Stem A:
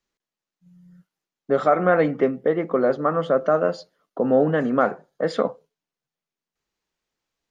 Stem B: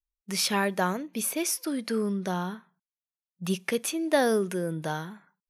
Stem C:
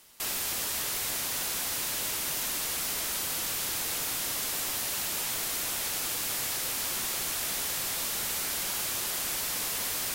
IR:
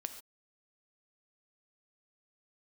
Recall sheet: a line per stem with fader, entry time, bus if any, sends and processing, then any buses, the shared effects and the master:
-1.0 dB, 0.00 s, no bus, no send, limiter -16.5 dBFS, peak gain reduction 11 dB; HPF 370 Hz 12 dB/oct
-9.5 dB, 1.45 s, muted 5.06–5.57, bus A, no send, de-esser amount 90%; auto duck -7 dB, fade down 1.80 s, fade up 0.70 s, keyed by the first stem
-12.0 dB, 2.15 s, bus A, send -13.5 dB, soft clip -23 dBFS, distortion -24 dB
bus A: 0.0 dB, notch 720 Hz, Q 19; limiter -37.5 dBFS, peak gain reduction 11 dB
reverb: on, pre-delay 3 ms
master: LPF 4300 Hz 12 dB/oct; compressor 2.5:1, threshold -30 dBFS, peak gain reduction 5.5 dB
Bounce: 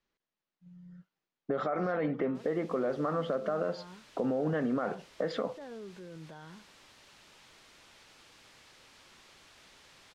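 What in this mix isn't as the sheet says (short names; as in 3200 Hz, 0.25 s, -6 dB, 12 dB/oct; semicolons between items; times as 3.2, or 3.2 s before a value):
stem A: missing HPF 370 Hz 12 dB/oct; stem C -12.0 dB -> -21.0 dB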